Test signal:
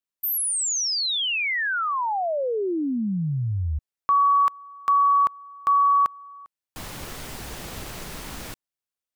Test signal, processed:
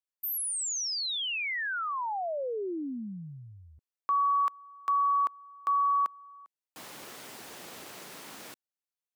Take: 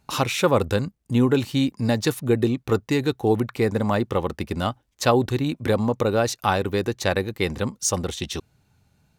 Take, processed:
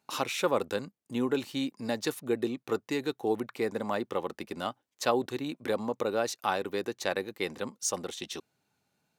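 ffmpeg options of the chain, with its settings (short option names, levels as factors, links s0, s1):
-af "highpass=260,volume=0.422"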